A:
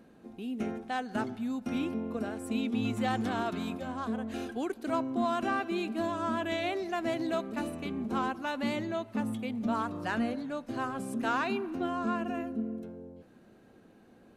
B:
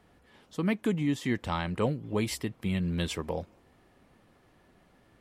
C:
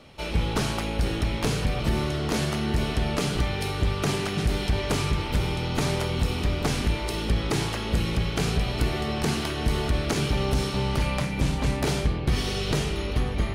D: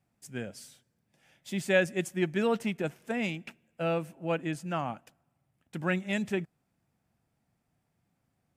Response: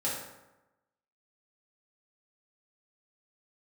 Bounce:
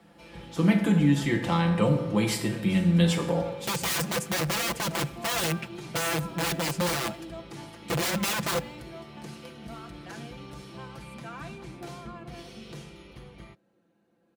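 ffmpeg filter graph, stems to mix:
-filter_complex "[0:a]volume=0.188,asplit=2[s0][s1];[s1]volume=0.168[s2];[1:a]volume=0.944,asplit=2[s3][s4];[s4]volume=0.562[s5];[2:a]volume=0.112[s6];[3:a]bass=f=250:g=8,treble=f=4000:g=0,dynaudnorm=f=110:g=17:m=4.73,aeval=exprs='(mod(6.68*val(0)+1,2)-1)/6.68':c=same,adelay=2150,volume=0.376,asplit=2[s7][s8];[s8]volume=0.0631[s9];[4:a]atrim=start_sample=2205[s10];[s2][s5][s9]amix=inputs=3:normalize=0[s11];[s11][s10]afir=irnorm=-1:irlink=0[s12];[s0][s3][s6][s7][s12]amix=inputs=5:normalize=0,highpass=70,aecho=1:1:5.9:0.65,acrossover=split=330|3000[s13][s14][s15];[s14]acompressor=threshold=0.0631:ratio=6[s16];[s13][s16][s15]amix=inputs=3:normalize=0"

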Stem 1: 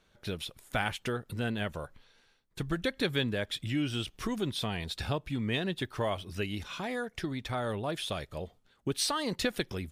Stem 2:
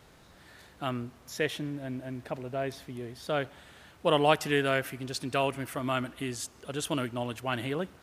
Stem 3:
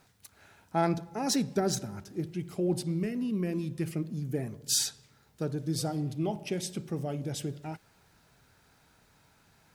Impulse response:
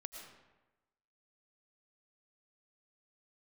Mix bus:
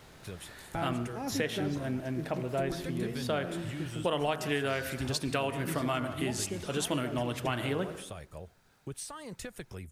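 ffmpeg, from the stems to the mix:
-filter_complex "[0:a]equalizer=f=250:t=o:w=1:g=-6,equalizer=f=4000:t=o:w=1:g=-10,equalizer=f=8000:t=o:w=1:g=8,acrossover=split=210[s0][s1];[s1]acompressor=threshold=0.01:ratio=2.5[s2];[s0][s2]amix=inputs=2:normalize=0,volume=0.668,asplit=2[s3][s4];[1:a]bandreject=f=52.93:t=h:w=4,bandreject=f=105.86:t=h:w=4,bandreject=f=158.79:t=h:w=4,bandreject=f=211.72:t=h:w=4,bandreject=f=264.65:t=h:w=4,bandreject=f=317.58:t=h:w=4,bandreject=f=370.51:t=h:w=4,bandreject=f=423.44:t=h:w=4,bandreject=f=476.37:t=h:w=4,bandreject=f=529.3:t=h:w=4,bandreject=f=582.23:t=h:w=4,bandreject=f=635.16:t=h:w=4,bandreject=f=688.09:t=h:w=4,bandreject=f=741.02:t=h:w=4,bandreject=f=793.95:t=h:w=4,bandreject=f=846.88:t=h:w=4,bandreject=f=899.81:t=h:w=4,bandreject=f=952.74:t=h:w=4,bandreject=f=1005.67:t=h:w=4,bandreject=f=1058.6:t=h:w=4,bandreject=f=1111.53:t=h:w=4,bandreject=f=1164.46:t=h:w=4,bandreject=f=1217.39:t=h:w=4,bandreject=f=1270.32:t=h:w=4,bandreject=f=1323.25:t=h:w=4,bandreject=f=1376.18:t=h:w=4,bandreject=f=1429.11:t=h:w=4,bandreject=f=1482.04:t=h:w=4,bandreject=f=1534.97:t=h:w=4,bandreject=f=1587.9:t=h:w=4,bandreject=f=1640.83:t=h:w=4,bandreject=f=1693.76:t=h:w=4,bandreject=f=1746.69:t=h:w=4,volume=1.26,asplit=2[s5][s6];[s6]volume=0.376[s7];[2:a]acrossover=split=3800[s8][s9];[s9]acompressor=threshold=0.00251:ratio=4:attack=1:release=60[s10];[s8][s10]amix=inputs=2:normalize=0,volume=0.501,asplit=2[s11][s12];[s12]volume=0.422[s13];[s4]apad=whole_len=429959[s14];[s11][s14]sidechaincompress=threshold=0.0112:ratio=8:attack=16:release=412[s15];[3:a]atrim=start_sample=2205[s16];[s7][s13]amix=inputs=2:normalize=0[s17];[s17][s16]afir=irnorm=-1:irlink=0[s18];[s3][s5][s15][s18]amix=inputs=4:normalize=0,acompressor=threshold=0.0447:ratio=6"

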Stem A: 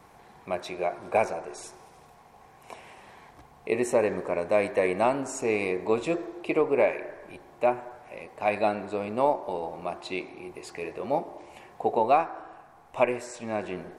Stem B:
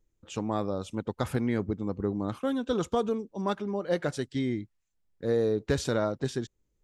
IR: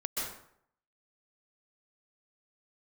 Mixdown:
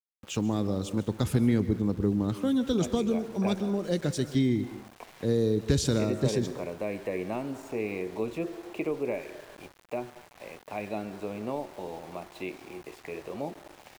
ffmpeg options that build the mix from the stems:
-filter_complex "[0:a]acrossover=split=3100[s0][s1];[s1]acompressor=threshold=0.00126:ratio=4:attack=1:release=60[s2];[s0][s2]amix=inputs=2:normalize=0,adelay=2300,volume=0.891[s3];[1:a]acontrast=85,volume=0.75,asplit=2[s4][s5];[s5]volume=0.168[s6];[2:a]atrim=start_sample=2205[s7];[s6][s7]afir=irnorm=-1:irlink=0[s8];[s3][s4][s8]amix=inputs=3:normalize=0,acrossover=split=360|3000[s9][s10][s11];[s10]acompressor=threshold=0.01:ratio=3[s12];[s9][s12][s11]amix=inputs=3:normalize=0,aeval=exprs='val(0)*gte(abs(val(0)),0.00501)':c=same"

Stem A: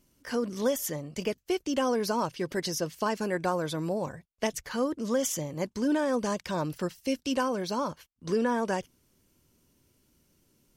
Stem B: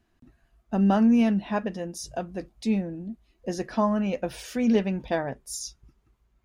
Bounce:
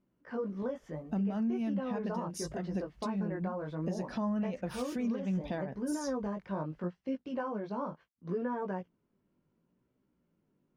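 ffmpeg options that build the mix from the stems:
-filter_complex "[0:a]lowpass=1400,flanger=delay=15.5:depth=5.1:speed=0.7,lowshelf=f=170:g=-11.5,volume=0.75,asplit=2[s0][s1];[1:a]acompressor=threshold=0.0224:ratio=2,adelay=400,volume=0.891[s2];[s1]apad=whole_len=301937[s3];[s2][s3]sidechaincompress=threshold=0.0178:ratio=8:attack=5.9:release=489[s4];[s0][s4]amix=inputs=2:normalize=0,equalizer=f=180:t=o:w=0.73:g=8.5,alimiter=level_in=1.26:limit=0.0631:level=0:latency=1:release=189,volume=0.794"

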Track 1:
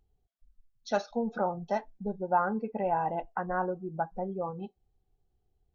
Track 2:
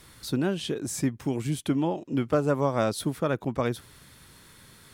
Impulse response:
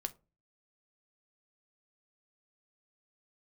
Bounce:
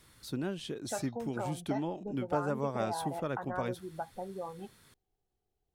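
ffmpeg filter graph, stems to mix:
-filter_complex "[0:a]lowshelf=f=160:g=-11.5,acompressor=threshold=0.0141:ratio=2,volume=0.841[s0];[1:a]volume=0.355[s1];[s0][s1]amix=inputs=2:normalize=0"

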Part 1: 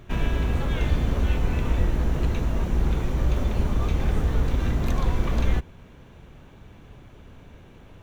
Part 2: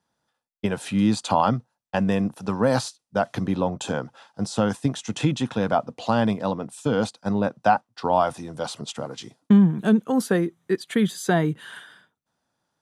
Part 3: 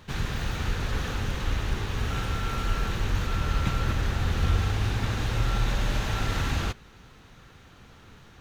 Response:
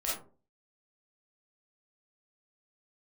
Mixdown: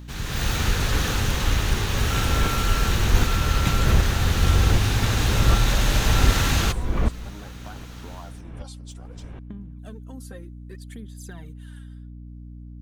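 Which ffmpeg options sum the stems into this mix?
-filter_complex "[0:a]lowpass=2100,dynaudnorm=f=290:g=3:m=3.55,aeval=exprs='val(0)*pow(10,-29*if(lt(mod(-1.3*n/s,1),2*abs(-1.3)/1000),1-mod(-1.3*n/s,1)/(2*abs(-1.3)/1000),(mod(-1.3*n/s,1)-2*abs(-1.3)/1000)/(1-2*abs(-1.3)/1000))/20)':c=same,adelay=1700,volume=0.708[s0];[1:a]aphaser=in_gain=1:out_gain=1:delay=3.8:decay=0.67:speed=0.63:type=sinusoidal,acompressor=threshold=0.112:ratio=10,volume=0.106[s1];[2:a]dynaudnorm=f=130:g=5:m=3.55,volume=0.562[s2];[s0][s1][s2]amix=inputs=3:normalize=0,highshelf=f=5000:g=11.5,aeval=exprs='val(0)+0.0126*(sin(2*PI*60*n/s)+sin(2*PI*2*60*n/s)/2+sin(2*PI*3*60*n/s)/3+sin(2*PI*4*60*n/s)/4+sin(2*PI*5*60*n/s)/5)':c=same"

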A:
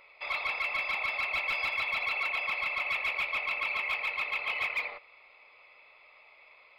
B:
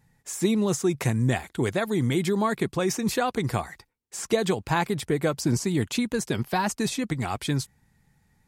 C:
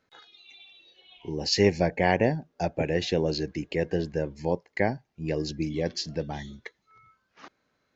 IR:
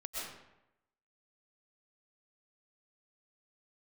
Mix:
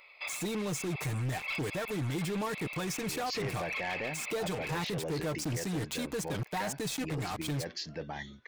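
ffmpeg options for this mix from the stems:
-filter_complex "[0:a]highshelf=f=2500:g=10.5,volume=0.631[s0];[1:a]aecho=1:1:6.6:0.58,acrusher=bits=4:mix=0:aa=0.5,volume=1.06,asplit=2[s1][s2];[2:a]equalizer=f=1600:t=o:w=2.8:g=11.5,adelay=1800,volume=0.376[s3];[s2]apad=whole_len=299371[s4];[s0][s4]sidechaincompress=threshold=0.02:ratio=6:attack=39:release=177[s5];[s5][s1][s3]amix=inputs=3:normalize=0,asoftclip=type=tanh:threshold=0.1,alimiter=level_in=1.78:limit=0.0631:level=0:latency=1:release=19,volume=0.562"

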